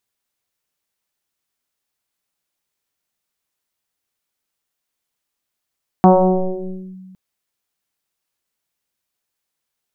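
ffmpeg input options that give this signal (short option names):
-f lavfi -i "aevalsrc='0.596*pow(10,-3*t/1.91)*sin(2*PI*187*t+4.1*clip(1-t/0.92,0,1)*sin(2*PI*0.99*187*t))':d=1.11:s=44100"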